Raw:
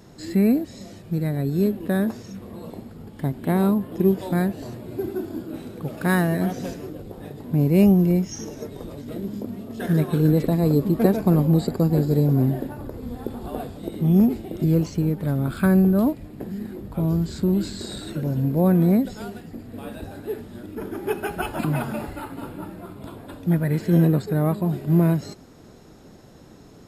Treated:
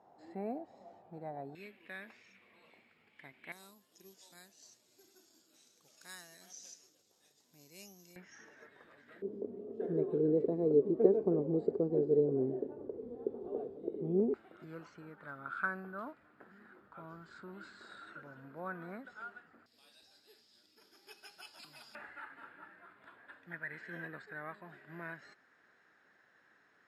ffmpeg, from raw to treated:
-af "asetnsamples=n=441:p=0,asendcmd='1.55 bandpass f 2300;3.52 bandpass f 6100;8.16 bandpass f 1700;9.22 bandpass f 420;14.34 bandpass f 1400;19.66 bandpass f 5000;21.95 bandpass f 1700',bandpass=f=780:t=q:w=5.6:csg=0"

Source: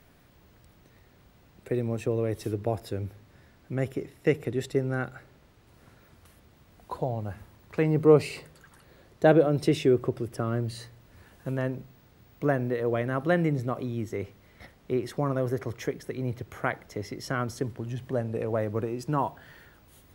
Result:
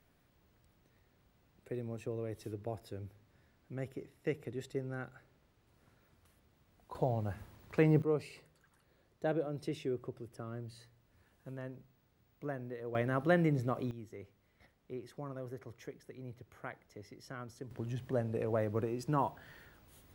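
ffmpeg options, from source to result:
-af "asetnsamples=n=441:p=0,asendcmd='6.95 volume volume -3dB;8.02 volume volume -15dB;12.95 volume volume -4.5dB;13.91 volume volume -16dB;17.71 volume volume -5dB',volume=0.251"

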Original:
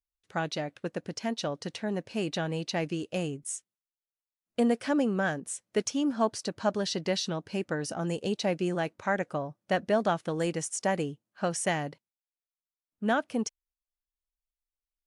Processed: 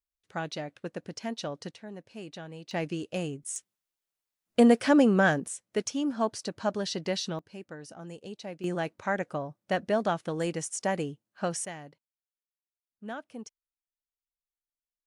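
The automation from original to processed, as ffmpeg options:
-af "asetnsamples=n=441:p=0,asendcmd='1.71 volume volume -11dB;2.71 volume volume -1dB;3.56 volume volume 6dB;5.48 volume volume -1.5dB;7.39 volume volume -11.5dB;8.64 volume volume -1dB;11.65 volume volume -12dB',volume=0.708"

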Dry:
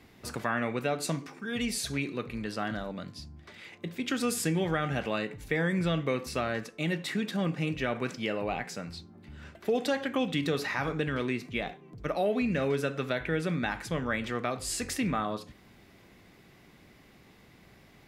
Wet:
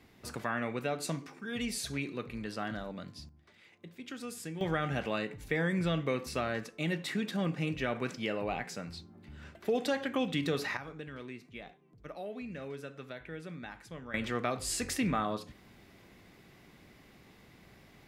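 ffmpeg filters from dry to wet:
-af "asetnsamples=n=441:p=0,asendcmd='3.29 volume volume -12.5dB;4.61 volume volume -2.5dB;10.77 volume volume -13.5dB;14.14 volume volume -1dB',volume=0.631"

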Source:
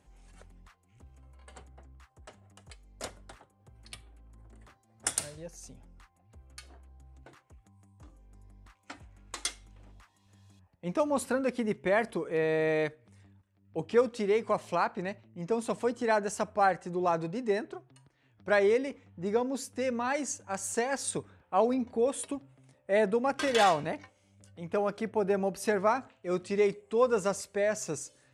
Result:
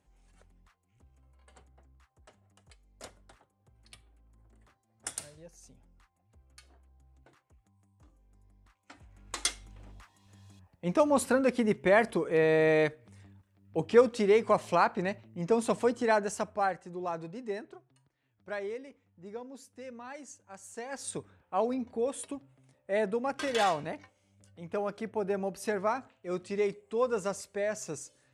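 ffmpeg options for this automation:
-af "volume=4.73,afade=t=in:st=8.91:d=0.51:silence=0.281838,afade=t=out:st=15.7:d=1.14:silence=0.298538,afade=t=out:st=17.5:d=1.32:silence=0.473151,afade=t=in:st=20.74:d=0.44:silence=0.316228"

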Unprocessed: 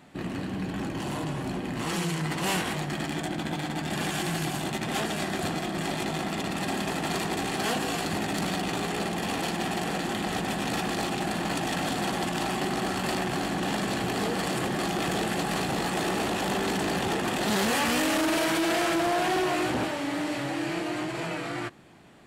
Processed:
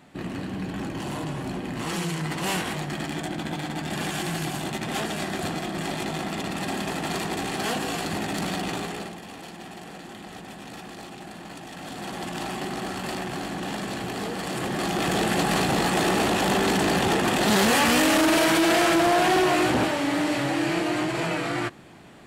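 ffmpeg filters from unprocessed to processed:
-af "volume=7.08,afade=t=out:st=8.7:d=0.51:silence=0.266073,afade=t=in:st=11.73:d=0.66:silence=0.375837,afade=t=in:st=14.42:d=1:silence=0.398107"

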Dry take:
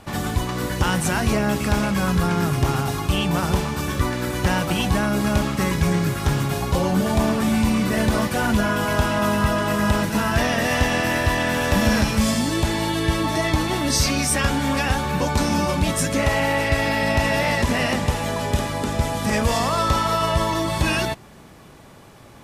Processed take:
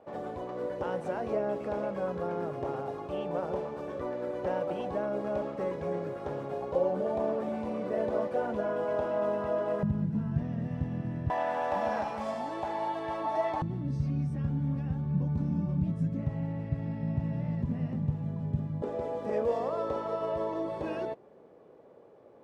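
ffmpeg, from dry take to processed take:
-af "asetnsamples=n=441:p=0,asendcmd='9.83 bandpass f 150;11.3 bandpass f 760;13.62 bandpass f 150;18.82 bandpass f 480',bandpass=f=530:t=q:w=3.5:csg=0"

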